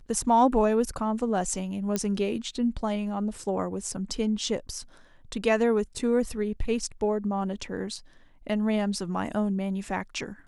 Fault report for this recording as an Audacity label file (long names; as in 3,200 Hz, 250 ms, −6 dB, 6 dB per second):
1.960000	1.960000	click −13 dBFS